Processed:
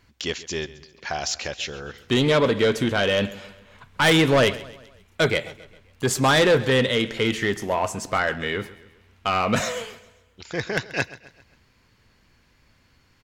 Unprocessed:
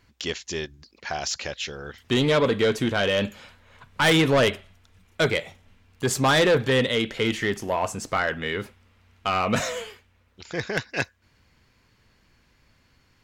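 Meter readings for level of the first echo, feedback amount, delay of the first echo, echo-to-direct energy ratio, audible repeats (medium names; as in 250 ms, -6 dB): -18.0 dB, 47%, 133 ms, -17.0 dB, 3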